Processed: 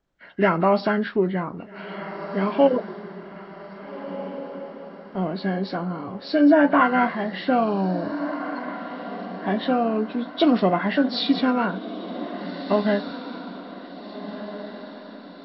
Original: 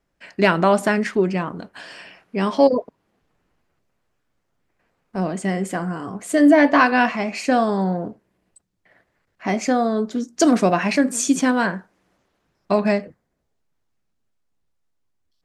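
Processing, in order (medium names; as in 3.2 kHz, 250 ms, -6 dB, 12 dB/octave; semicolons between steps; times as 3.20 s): knee-point frequency compression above 1.2 kHz 1.5:1; echo that smears into a reverb 1684 ms, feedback 46%, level -11.5 dB; trim -2.5 dB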